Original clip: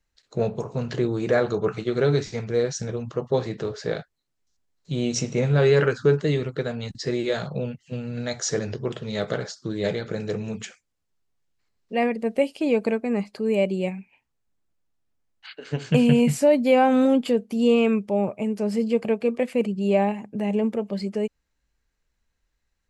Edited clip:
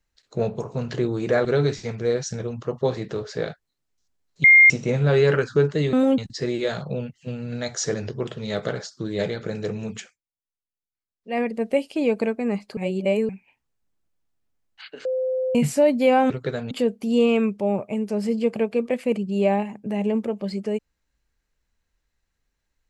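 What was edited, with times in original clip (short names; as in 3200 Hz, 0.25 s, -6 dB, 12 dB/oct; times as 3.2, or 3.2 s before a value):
1.45–1.94 cut
4.93–5.19 bleep 2120 Hz -8 dBFS
6.42–6.83 swap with 16.95–17.2
10.64–12.08 dip -21 dB, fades 0.22 s
13.42–13.94 reverse
15.7–16.2 bleep 516 Hz -21 dBFS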